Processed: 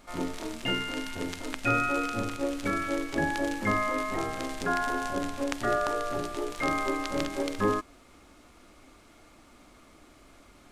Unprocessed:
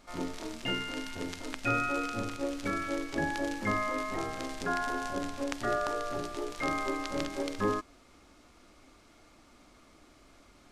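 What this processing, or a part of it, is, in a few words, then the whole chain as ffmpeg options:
exciter from parts: -filter_complex "[0:a]asplit=2[a][b];[b]highpass=4.6k,asoftclip=type=tanh:threshold=-37.5dB,highpass=4.5k,volume=-6dB[c];[a][c]amix=inputs=2:normalize=0,volume=3.5dB"

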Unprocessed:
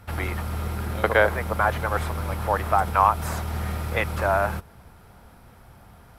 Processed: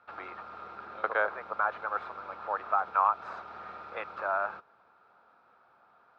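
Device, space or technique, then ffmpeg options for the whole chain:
phone earpiece: -af "highpass=390,equalizer=f=1.3k:t=q:w=4:g=8,equalizer=f=2k:t=q:w=4:g=-9,equalizer=f=3.1k:t=q:w=4:g=-9,lowpass=f=3.5k:w=0.5412,lowpass=f=3.5k:w=1.3066,equalizer=f=180:w=0.38:g=-5.5,volume=-8dB"

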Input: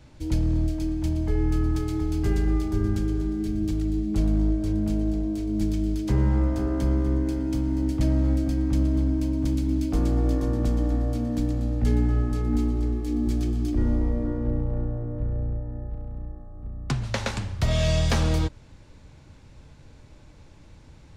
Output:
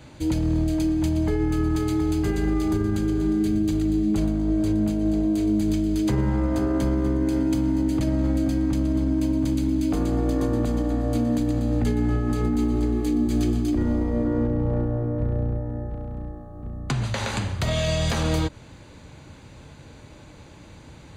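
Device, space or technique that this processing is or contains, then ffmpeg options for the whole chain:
PA system with an anti-feedback notch: -af "highpass=f=130:p=1,asuperstop=centerf=5400:order=12:qfactor=7.9,alimiter=limit=-23.5dB:level=0:latency=1:release=93,volume=8.5dB"

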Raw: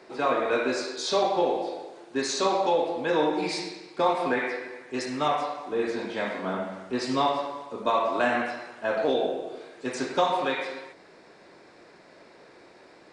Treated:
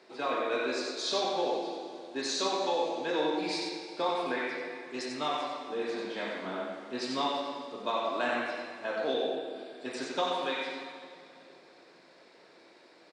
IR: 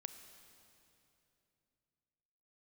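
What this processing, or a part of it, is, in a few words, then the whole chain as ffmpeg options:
PA in a hall: -filter_complex "[0:a]highpass=160,equalizer=f=3.8k:t=o:w=1.2:g=6,aecho=1:1:92:0.531[a];[1:a]atrim=start_sample=2205[b];[a][b]afir=irnorm=-1:irlink=0,asettb=1/sr,asplit=3[c][d][e];[c]atrim=end=9.364[f];[d]atrim=start=9.36:end=10.02,asetpts=PTS-STARTPTS,afade=t=in:d=0.004:c=qsin,afade=t=out:st=0.656:d=0.004:c=qsin,bandreject=f=6.4k:w=5[g];[e]atrim=start=10.016[h];[f][g]acrossfade=d=0.004:c1=hsin:c2=qsin[i];[i][h]acrossfade=d=0.004:c1=qsin:c2=hsin,volume=-3.5dB"

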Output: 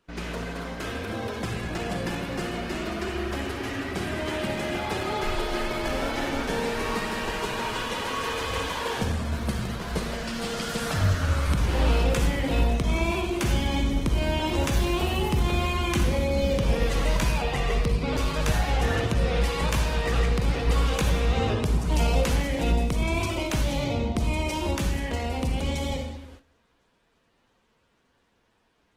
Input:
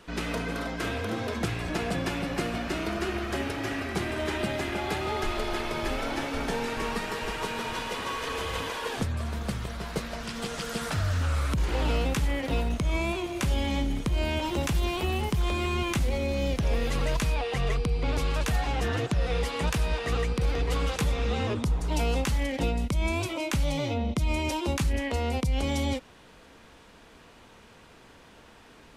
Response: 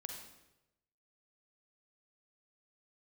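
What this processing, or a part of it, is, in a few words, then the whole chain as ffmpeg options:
speakerphone in a meeting room: -filter_complex "[1:a]atrim=start_sample=2205[a];[0:a][a]afir=irnorm=-1:irlink=0,dynaudnorm=f=580:g=17:m=4dB,agate=range=-14dB:threshold=-48dB:ratio=16:detection=peak,volume=2dB" -ar 48000 -c:a libopus -b:a 16k

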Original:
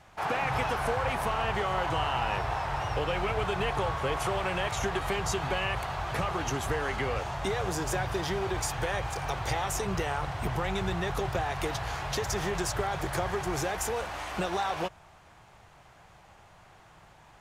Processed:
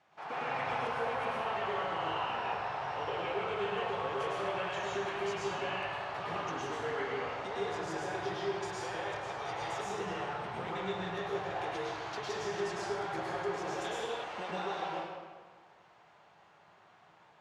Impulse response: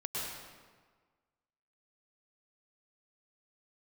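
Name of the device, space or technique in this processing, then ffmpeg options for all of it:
supermarket ceiling speaker: -filter_complex "[0:a]highpass=220,lowpass=5.1k[a];[1:a]atrim=start_sample=2205[b];[a][b]afir=irnorm=-1:irlink=0,asettb=1/sr,asplit=3[c][d][e];[c]atrim=end=13.844[f];[d]atrim=start=13.84:end=14.24,asetpts=PTS-STARTPTS,afade=t=in:d=0.004:c=qsin,afade=t=out:st=0.396:d=0.004:c=qsin,equalizer=f=3.4k:w=6.1:g=14[g];[e]atrim=start=14.236[h];[f][g]acrossfade=d=0.004:c1=hsin:c2=qsin[i];[i][h]acrossfade=d=0.004:c1=qsin:c2=hsin,volume=-8.5dB"

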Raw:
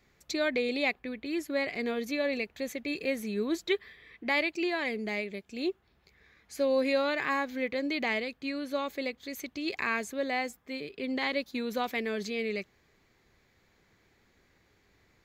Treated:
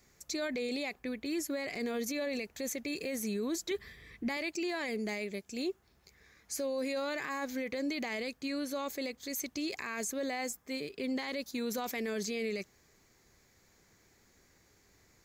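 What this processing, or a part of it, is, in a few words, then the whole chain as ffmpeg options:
over-bright horn tweeter: -filter_complex "[0:a]highshelf=f=4.6k:t=q:w=1.5:g=8.5,alimiter=level_in=3.5dB:limit=-24dB:level=0:latency=1:release=18,volume=-3.5dB,asettb=1/sr,asplit=3[a][b][c];[a]atrim=end=3.714[d];[b]atrim=start=3.71:end=4.37,asetpts=PTS-STARTPTS,afade=t=in:d=0.004:c=qsin,afade=t=out:st=0.656:d=0.004:c=qsin,bass=f=250:g=11,treble=f=4k:g=1[e];[c]atrim=start=4.366[f];[d][e]acrossfade=d=0.004:c1=hsin:c2=qsin[g];[g][f]acrossfade=d=0.004:c1=qsin:c2=hsin"

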